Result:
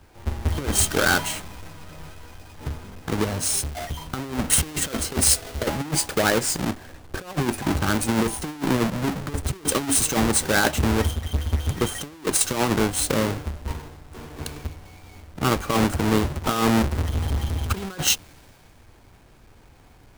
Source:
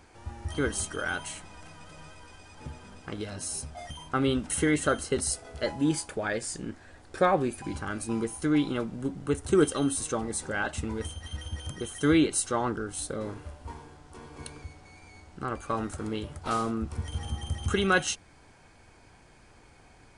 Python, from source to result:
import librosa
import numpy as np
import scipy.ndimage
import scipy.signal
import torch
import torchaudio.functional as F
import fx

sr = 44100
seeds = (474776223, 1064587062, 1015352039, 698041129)

y = fx.halfwave_hold(x, sr)
y = fx.over_compress(y, sr, threshold_db=-26.0, ratio=-0.5)
y = fx.band_widen(y, sr, depth_pct=40)
y = y * librosa.db_to_amplitude(4.5)